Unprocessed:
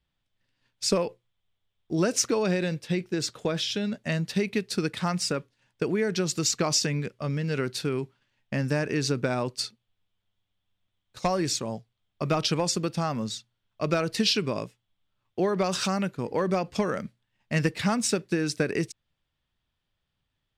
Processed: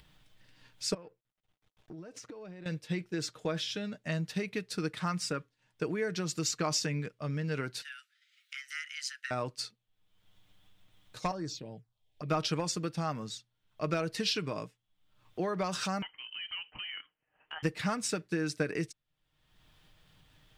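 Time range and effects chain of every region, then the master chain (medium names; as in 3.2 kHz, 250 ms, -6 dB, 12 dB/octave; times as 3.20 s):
0.94–2.66 s: companding laws mixed up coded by A + low-pass 2 kHz 6 dB/octave + compression 10:1, threshold -37 dBFS
7.82–9.31 s: steep high-pass 1 kHz 72 dB/octave + frequency shift +360 Hz
11.31–12.29 s: treble shelf 7.2 kHz -6 dB + compression 1.5:1, threshold -32 dBFS + touch-sensitive phaser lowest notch 180 Hz, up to 2.8 kHz, full sweep at -26.5 dBFS
16.02–17.63 s: inverse Chebyshev high-pass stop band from 210 Hz + compression 3:1, threshold -32 dBFS + frequency inversion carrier 3.5 kHz
whole clip: comb 6.5 ms, depth 38%; dynamic bell 1.4 kHz, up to +4 dB, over -43 dBFS, Q 1.2; upward compressor, threshold -34 dBFS; trim -8 dB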